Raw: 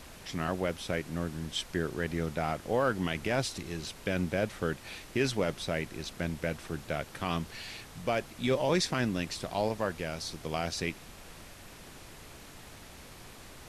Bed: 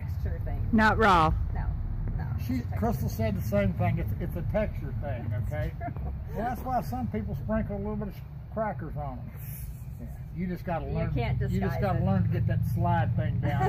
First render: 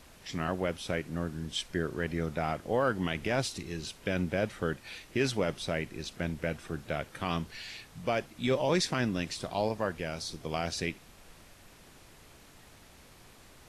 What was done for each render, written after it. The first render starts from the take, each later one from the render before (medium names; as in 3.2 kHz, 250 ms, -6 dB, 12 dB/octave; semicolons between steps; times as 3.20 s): noise print and reduce 6 dB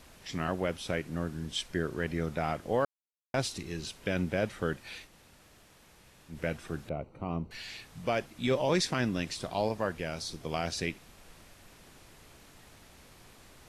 2.85–3.34 s: mute; 5.09–6.33 s: room tone, crossfade 0.10 s; 6.89–7.51 s: boxcar filter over 26 samples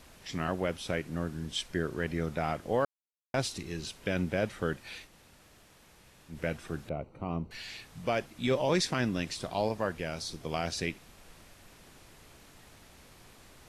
no audible change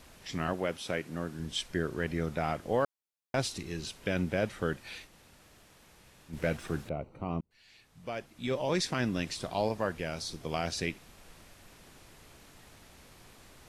0.53–1.40 s: high-pass 180 Hz 6 dB/octave; 6.33–6.88 s: waveshaping leveller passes 1; 7.41–9.18 s: fade in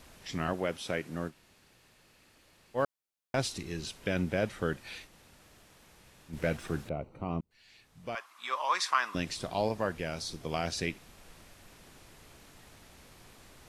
1.30–2.77 s: room tone, crossfade 0.06 s; 8.15–9.15 s: resonant high-pass 1.1 kHz, resonance Q 6.9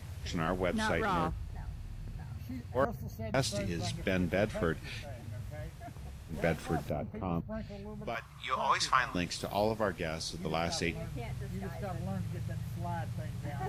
add bed -11.5 dB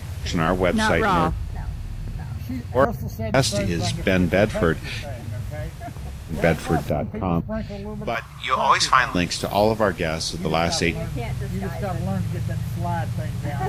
trim +12 dB; peak limiter -3 dBFS, peak gain reduction 1 dB